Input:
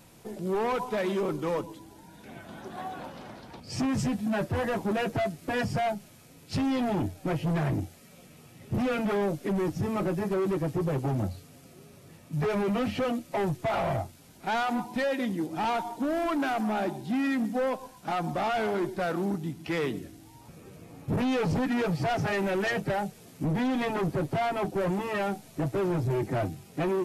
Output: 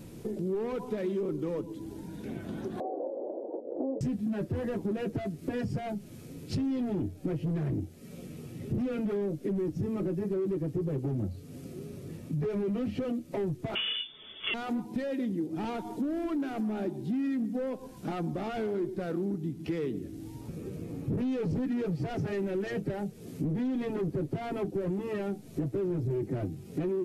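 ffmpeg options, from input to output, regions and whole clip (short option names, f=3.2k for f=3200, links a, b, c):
-filter_complex "[0:a]asettb=1/sr,asplit=3[a][b][c];[a]atrim=end=2.804[d];[b]atrim=start=2.8:end=4.01,asetpts=PTS-STARTPTS,afade=t=in:d=0.004:c=qsin,afade=t=out:st=1.206:d=0.004:c=qsin,asuperpass=centerf=510:order=8:qfactor=0.9,equalizer=f=560:w=1.8:g=14.5[e];[c]atrim=start=4.006[f];[d][e]acrossfade=d=0.004:c1=hsin:c2=qsin[g];[g][f]acrossfade=d=0.004:c1=qsin:c2=hsin,asettb=1/sr,asplit=3[h][i][j];[h]atrim=end=13.754[k];[i]atrim=start=13.75:end=14.54,asetpts=PTS-STARTPTS,afade=t=in:d=0.004:c=qsin,afade=t=out:st=0.786:d=0.004:c=qsin,acontrast=79,aecho=1:1:4.4:0.44,atrim=end_sample=34839,lowpass=f=3.1k:t=q:w=0.5098,lowpass=f=3.1k:t=q:w=0.6013,lowpass=f=3.1k:t=q:w=0.9,lowpass=f=3.1k:t=q:w=2.563,afreqshift=-3600[l];[j]atrim=start=14.536[m];[k][l]acrossfade=d=0.004:c1=hsin:c2=qsin[n];[n][m]acrossfade=d=0.004:c1=qsin:c2=hsin,lowshelf=f=550:t=q:w=1.5:g=9.5,acompressor=threshold=-34dB:ratio=3"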